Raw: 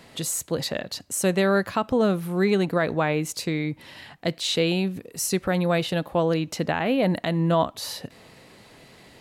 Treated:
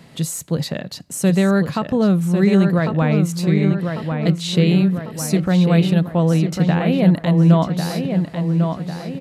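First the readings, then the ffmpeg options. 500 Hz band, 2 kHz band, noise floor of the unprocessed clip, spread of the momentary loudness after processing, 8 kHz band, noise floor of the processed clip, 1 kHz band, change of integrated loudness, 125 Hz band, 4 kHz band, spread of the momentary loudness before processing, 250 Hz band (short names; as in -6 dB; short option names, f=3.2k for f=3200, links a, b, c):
+2.5 dB, +1.0 dB, -52 dBFS, 9 LU, 0.0 dB, -38 dBFS, +1.5 dB, +7.0 dB, +12.5 dB, +0.5 dB, 9 LU, +10.0 dB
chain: -filter_complex "[0:a]equalizer=f=160:t=o:w=1:g=12.5,asplit=2[a][b];[b]adelay=1098,lowpass=f=3.4k:p=1,volume=-5.5dB,asplit=2[c][d];[d]adelay=1098,lowpass=f=3.4k:p=1,volume=0.54,asplit=2[e][f];[f]adelay=1098,lowpass=f=3.4k:p=1,volume=0.54,asplit=2[g][h];[h]adelay=1098,lowpass=f=3.4k:p=1,volume=0.54,asplit=2[i][j];[j]adelay=1098,lowpass=f=3.4k:p=1,volume=0.54,asplit=2[k][l];[l]adelay=1098,lowpass=f=3.4k:p=1,volume=0.54,asplit=2[m][n];[n]adelay=1098,lowpass=f=3.4k:p=1,volume=0.54[o];[c][e][g][i][k][m][o]amix=inputs=7:normalize=0[p];[a][p]amix=inputs=2:normalize=0,aresample=32000,aresample=44100"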